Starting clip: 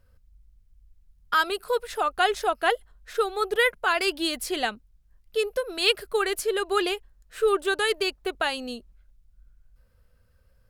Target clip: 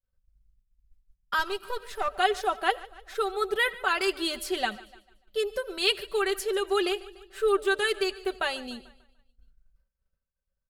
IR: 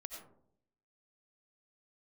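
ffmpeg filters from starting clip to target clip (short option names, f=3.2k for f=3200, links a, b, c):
-filter_complex "[0:a]asettb=1/sr,asplit=3[a][b][c];[a]atrim=end=1.394[d];[b]atrim=start=1.39:end=2.08,asetpts=PTS-STARTPTS,afade=t=in:d=0.004:c=qsin,afade=t=out:st=0.686:d=0.004:c=qsin,aeval=exprs='if(lt(val(0),0),0.447*val(0),val(0))':c=same[e];[c]atrim=start=2.076[f];[d][e]acrossfade=d=0.004:c1=hsin:c2=qsin[g];[g][f]acrossfade=d=0.004:c1=qsin:c2=hsin,aecho=1:1:5.2:0.61,aecho=1:1:147|294|441|588|735:0.1|0.057|0.0325|0.0185|0.0106,agate=range=-33dB:threshold=-44dB:ratio=3:detection=peak,asplit=2[h][i];[1:a]atrim=start_sample=2205,afade=t=out:st=0.15:d=0.01,atrim=end_sample=7056,lowpass=8.5k[j];[i][j]afir=irnorm=-1:irlink=0,volume=-10dB[k];[h][k]amix=inputs=2:normalize=0,volume=-5dB"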